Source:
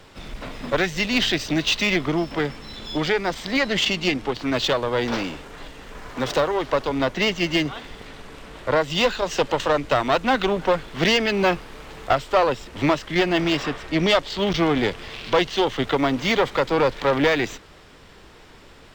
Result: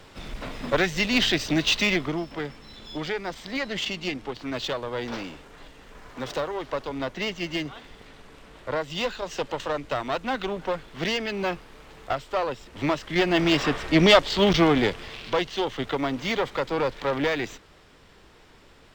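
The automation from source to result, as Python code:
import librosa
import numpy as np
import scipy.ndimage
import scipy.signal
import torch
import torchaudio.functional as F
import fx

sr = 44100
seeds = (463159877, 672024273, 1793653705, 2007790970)

y = fx.gain(x, sr, db=fx.line((1.84, -1.0), (2.27, -8.0), (12.58, -8.0), (13.78, 3.0), (14.44, 3.0), (15.41, -6.0)))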